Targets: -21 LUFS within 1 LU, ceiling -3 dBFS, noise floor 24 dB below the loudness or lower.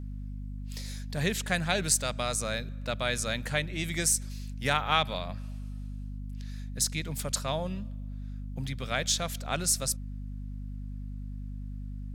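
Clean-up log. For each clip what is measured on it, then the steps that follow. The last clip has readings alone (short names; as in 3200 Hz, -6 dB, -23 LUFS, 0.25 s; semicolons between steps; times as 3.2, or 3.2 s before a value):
hum 50 Hz; harmonics up to 250 Hz; hum level -35 dBFS; loudness -31.5 LUFS; peak -9.5 dBFS; loudness target -21.0 LUFS
-> de-hum 50 Hz, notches 5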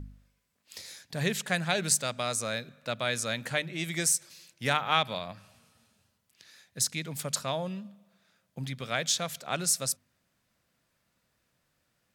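hum none; loudness -30.0 LUFS; peak -9.5 dBFS; loudness target -21.0 LUFS
-> gain +9 dB; limiter -3 dBFS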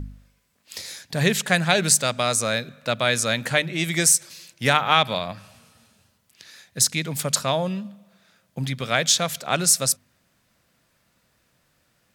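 loudness -21.0 LUFS; peak -3.0 dBFS; noise floor -67 dBFS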